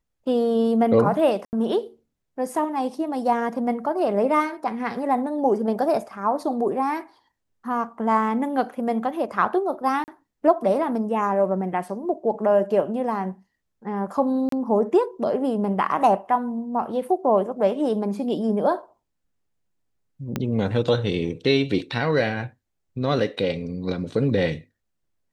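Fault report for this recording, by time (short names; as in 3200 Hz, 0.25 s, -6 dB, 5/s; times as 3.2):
1.45–1.53 gap 79 ms
10.04–10.08 gap 39 ms
14.49–14.52 gap 33 ms
20.36 pop -12 dBFS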